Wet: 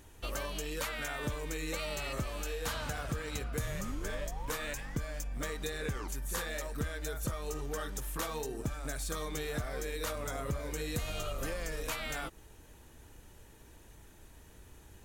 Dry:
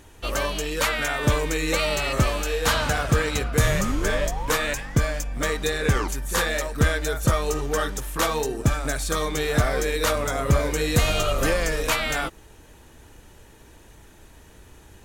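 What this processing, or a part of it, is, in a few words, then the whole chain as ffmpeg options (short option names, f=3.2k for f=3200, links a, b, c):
ASMR close-microphone chain: -af "lowshelf=f=200:g=3,acompressor=threshold=-26dB:ratio=4,highshelf=f=10k:g=7,volume=-8.5dB"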